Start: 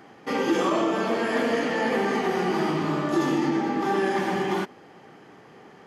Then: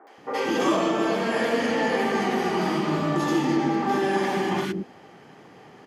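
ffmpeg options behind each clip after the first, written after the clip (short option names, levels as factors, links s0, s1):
-filter_complex "[0:a]acrossover=split=360|1400[s0][s1][s2];[s2]adelay=70[s3];[s0]adelay=180[s4];[s4][s1][s3]amix=inputs=3:normalize=0,volume=1.33"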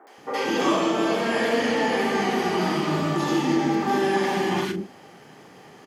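-filter_complex "[0:a]acrossover=split=5400[s0][s1];[s1]acompressor=threshold=0.00224:ratio=4:attack=1:release=60[s2];[s0][s2]amix=inputs=2:normalize=0,highshelf=f=5200:g=10.5,asplit=2[s3][s4];[s4]adelay=39,volume=0.335[s5];[s3][s5]amix=inputs=2:normalize=0"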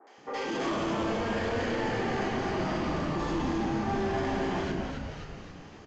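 -filter_complex "[0:a]aresample=16000,asoftclip=type=tanh:threshold=0.0891,aresample=44100,asplit=8[s0][s1][s2][s3][s4][s5][s6][s7];[s1]adelay=265,afreqshift=-120,volume=0.631[s8];[s2]adelay=530,afreqshift=-240,volume=0.347[s9];[s3]adelay=795,afreqshift=-360,volume=0.191[s10];[s4]adelay=1060,afreqshift=-480,volume=0.105[s11];[s5]adelay=1325,afreqshift=-600,volume=0.0575[s12];[s6]adelay=1590,afreqshift=-720,volume=0.0316[s13];[s7]adelay=1855,afreqshift=-840,volume=0.0174[s14];[s0][s8][s9][s10][s11][s12][s13][s14]amix=inputs=8:normalize=0,adynamicequalizer=threshold=0.0126:dfrequency=2000:dqfactor=0.7:tfrequency=2000:tqfactor=0.7:attack=5:release=100:ratio=0.375:range=2:mode=cutabove:tftype=highshelf,volume=0.531"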